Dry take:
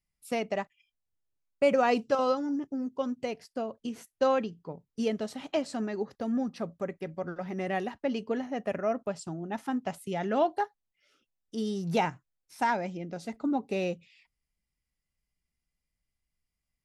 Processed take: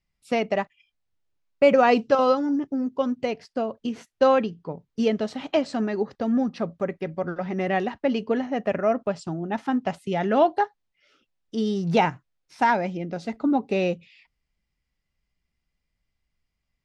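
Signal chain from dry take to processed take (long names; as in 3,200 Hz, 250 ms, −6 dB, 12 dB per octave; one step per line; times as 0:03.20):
low-pass filter 4,900 Hz 12 dB per octave
level +7 dB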